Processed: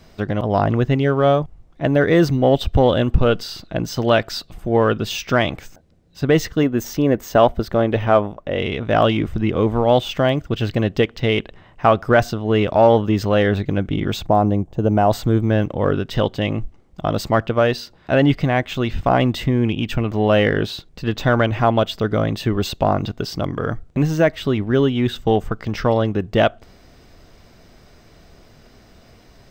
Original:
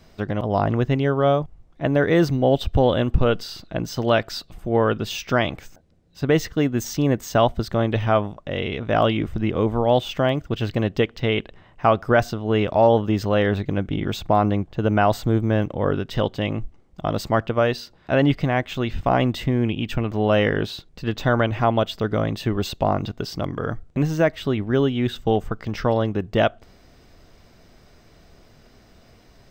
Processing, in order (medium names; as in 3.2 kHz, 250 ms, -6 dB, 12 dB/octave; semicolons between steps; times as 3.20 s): 6.63–8.60 s: graphic EQ 125/500/4000/8000 Hz -4/+3/-4/-6 dB; in parallel at -11 dB: one-sided clip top -18.5 dBFS; 14.26–15.11 s: on the sum: high-order bell 2.4 kHz -10 dB 2.3 oct; trim +1.5 dB